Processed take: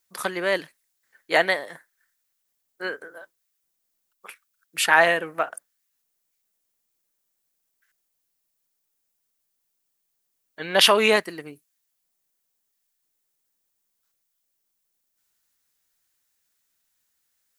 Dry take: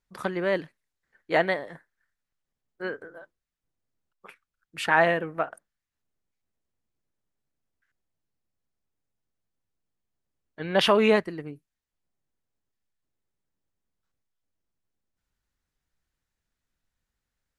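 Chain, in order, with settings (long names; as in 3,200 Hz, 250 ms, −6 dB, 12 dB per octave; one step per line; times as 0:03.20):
RIAA equalisation recording
level +3.5 dB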